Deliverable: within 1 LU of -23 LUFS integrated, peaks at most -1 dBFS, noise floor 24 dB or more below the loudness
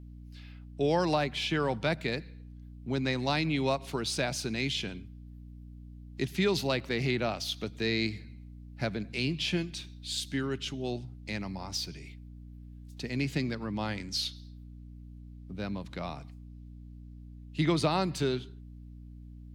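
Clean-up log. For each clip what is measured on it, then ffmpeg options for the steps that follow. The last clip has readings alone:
hum 60 Hz; harmonics up to 300 Hz; hum level -44 dBFS; loudness -32.0 LUFS; peak -15.0 dBFS; loudness target -23.0 LUFS
-> -af "bandreject=f=60:t=h:w=4,bandreject=f=120:t=h:w=4,bandreject=f=180:t=h:w=4,bandreject=f=240:t=h:w=4,bandreject=f=300:t=h:w=4"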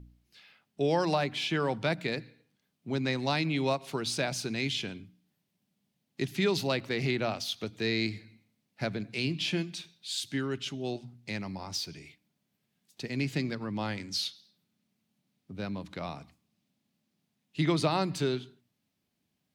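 hum none; loudness -32.0 LUFS; peak -14.5 dBFS; loudness target -23.0 LUFS
-> -af "volume=9dB"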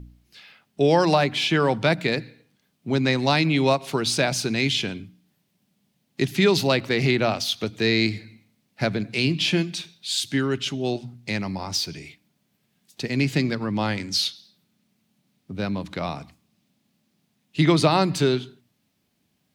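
loudness -23.0 LUFS; peak -5.5 dBFS; noise floor -71 dBFS

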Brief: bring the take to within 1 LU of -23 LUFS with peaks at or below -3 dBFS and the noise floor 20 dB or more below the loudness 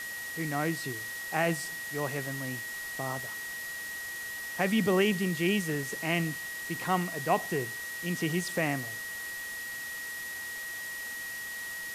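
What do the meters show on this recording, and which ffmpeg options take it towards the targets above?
steady tone 1900 Hz; tone level -37 dBFS; noise floor -39 dBFS; noise floor target -52 dBFS; loudness -32.0 LUFS; peak -12.5 dBFS; loudness target -23.0 LUFS
-> -af "bandreject=f=1.9k:w=30"
-af "afftdn=nr=13:nf=-39"
-af "volume=9dB"

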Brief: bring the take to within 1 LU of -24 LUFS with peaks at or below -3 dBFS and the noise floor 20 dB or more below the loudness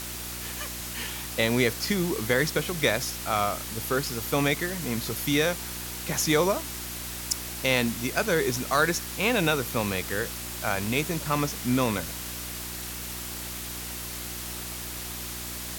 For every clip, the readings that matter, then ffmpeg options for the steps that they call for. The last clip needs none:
hum 60 Hz; harmonics up to 360 Hz; hum level -40 dBFS; noise floor -36 dBFS; noise floor target -48 dBFS; loudness -27.5 LUFS; peak -8.5 dBFS; loudness target -24.0 LUFS
-> -af "bandreject=f=60:t=h:w=4,bandreject=f=120:t=h:w=4,bandreject=f=180:t=h:w=4,bandreject=f=240:t=h:w=4,bandreject=f=300:t=h:w=4,bandreject=f=360:t=h:w=4"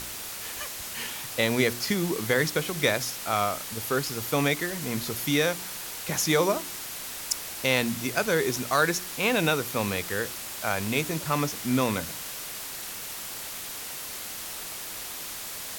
hum none; noise floor -37 dBFS; noise floor target -48 dBFS
-> -af "afftdn=nr=11:nf=-37"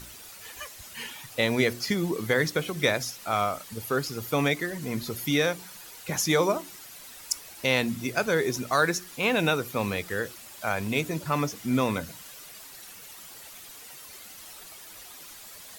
noise floor -46 dBFS; noise floor target -48 dBFS
-> -af "afftdn=nr=6:nf=-46"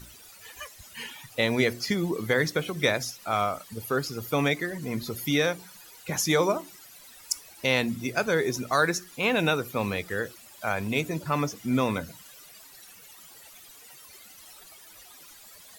noise floor -50 dBFS; loudness -27.5 LUFS; peak -9.5 dBFS; loudness target -24.0 LUFS
-> -af "volume=3.5dB"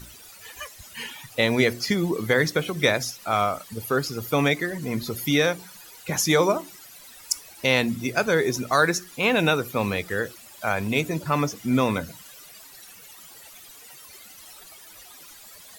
loudness -24.0 LUFS; peak -6.0 dBFS; noise floor -47 dBFS

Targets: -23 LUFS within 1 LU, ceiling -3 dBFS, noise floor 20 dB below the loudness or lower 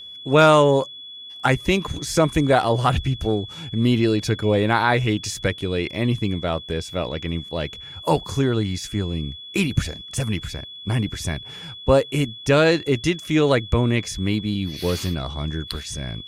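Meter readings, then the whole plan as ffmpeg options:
steady tone 3400 Hz; tone level -36 dBFS; loudness -22.0 LUFS; peak -4.0 dBFS; loudness target -23.0 LUFS
-> -af "bandreject=f=3.4k:w=30"
-af "volume=-1dB"

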